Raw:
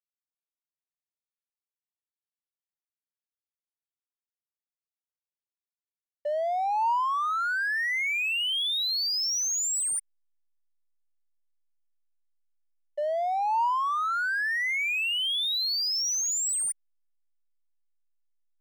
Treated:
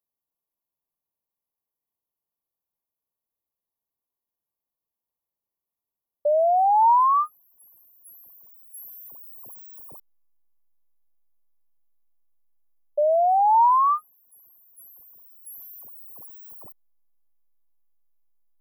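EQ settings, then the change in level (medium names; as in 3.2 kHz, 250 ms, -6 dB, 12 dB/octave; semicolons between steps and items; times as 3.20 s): brick-wall FIR band-stop 1.2–11 kHz; high-order bell 5 kHz +11 dB 2.3 oct; +8.5 dB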